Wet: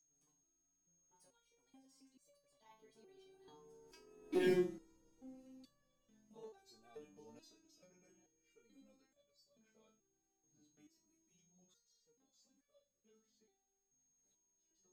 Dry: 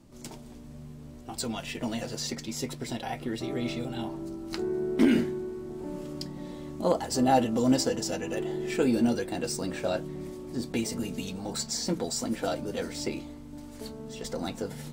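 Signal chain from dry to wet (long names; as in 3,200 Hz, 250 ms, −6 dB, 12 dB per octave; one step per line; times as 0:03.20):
source passing by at 0:04.56, 46 m/s, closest 4.3 metres
steady tone 6,500 Hz −64 dBFS
step-sequenced resonator 2.3 Hz 150–570 Hz
level +7.5 dB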